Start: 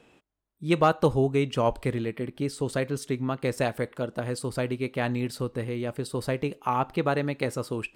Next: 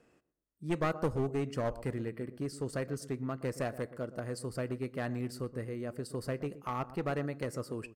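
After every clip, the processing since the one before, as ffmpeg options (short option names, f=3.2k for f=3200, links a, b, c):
-filter_complex "[0:a]superequalizer=9b=0.562:12b=0.501:13b=0.316,asplit=2[a][b];[b]adelay=121,lowpass=f=1k:p=1,volume=-14.5dB,asplit=2[c][d];[d]adelay=121,lowpass=f=1k:p=1,volume=0.36,asplit=2[e][f];[f]adelay=121,lowpass=f=1k:p=1,volume=0.36[g];[a][c][e][g]amix=inputs=4:normalize=0,aeval=exprs='clip(val(0),-1,0.0708)':c=same,volume=-7.5dB"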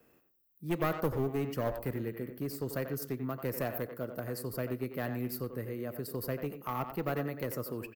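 -filter_complex "[0:a]acrossover=split=110|490|2200[a][b][c][d];[d]aexciter=amount=10:drive=8.3:freq=12k[e];[a][b][c][e]amix=inputs=4:normalize=0,asplit=2[f][g];[g]adelay=90,highpass=300,lowpass=3.4k,asoftclip=type=hard:threshold=-27dB,volume=-8dB[h];[f][h]amix=inputs=2:normalize=0"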